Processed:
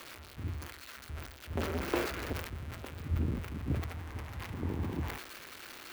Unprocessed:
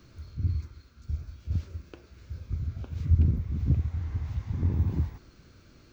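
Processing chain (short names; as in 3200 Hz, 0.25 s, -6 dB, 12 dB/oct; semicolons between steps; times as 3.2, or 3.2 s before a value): switching spikes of -25 dBFS; low shelf 200 Hz +4 dB; 1.57–2.33 sample leveller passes 5; three-band isolator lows -18 dB, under 280 Hz, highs -20 dB, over 2700 Hz; sustainer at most 65 dB/s; gain +2.5 dB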